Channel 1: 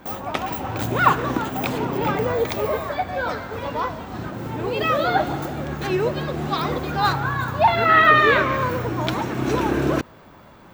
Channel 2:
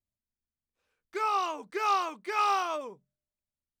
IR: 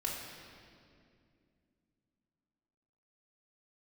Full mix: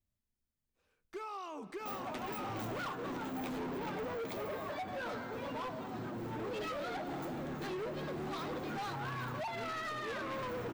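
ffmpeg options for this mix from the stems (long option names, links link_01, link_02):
-filter_complex "[0:a]highpass=200,acompressor=threshold=-22dB:ratio=8,flanger=delay=7.8:depth=3.9:regen=45:speed=0.26:shape=sinusoidal,adelay=1800,volume=1dB[link_01];[1:a]acompressor=threshold=-32dB:ratio=6,volume=-1.5dB,asplit=2[link_02][link_03];[link_03]volume=-20dB[link_04];[2:a]atrim=start_sample=2205[link_05];[link_04][link_05]afir=irnorm=-1:irlink=0[link_06];[link_01][link_02][link_06]amix=inputs=3:normalize=0,lowshelf=frequency=430:gain=8.5,volume=28dB,asoftclip=hard,volume=-28dB,alimiter=level_in=13dB:limit=-24dB:level=0:latency=1:release=12,volume=-13dB"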